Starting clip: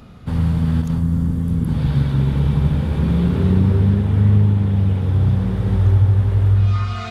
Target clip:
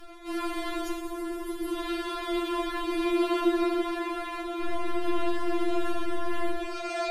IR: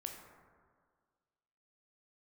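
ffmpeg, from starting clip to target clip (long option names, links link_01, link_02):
-filter_complex "[0:a]asettb=1/sr,asplit=3[link_01][link_02][link_03];[link_01]atrim=end=4.624[link_04];[link_02]atrim=start=4.62:end=6.57,asetpts=PTS-STARTPTS,afade=type=in:duration=0.004:curve=qsin,afade=type=out:start_time=1.946:duration=0.004:curve=qsin,aeval=exprs='0.531*(cos(1*acos(clip(val(0)/0.531,-1,1)))-cos(1*PI/2))+0.00841*(cos(8*acos(clip(val(0)/0.531,-1,1)))-cos(8*PI/2))':channel_layout=same[link_05];[link_03]atrim=start=6.566[link_06];[link_04][link_05]acrossfade=duration=0.004:curve1=hsin:curve2=qsin[link_07];[link_07][link_06]acrossfade=duration=0.004:curve1=qsin:curve2=hsin[link_08];[1:a]atrim=start_sample=2205,afade=type=out:start_time=0.35:duration=0.01,atrim=end_sample=15876,asetrate=37926,aresample=44100[link_09];[link_08][link_09]afir=irnorm=-1:irlink=0,afftfilt=real='re*4*eq(mod(b,16),0)':imag='im*4*eq(mod(b,16),0)':win_size=2048:overlap=0.75,volume=8.5dB"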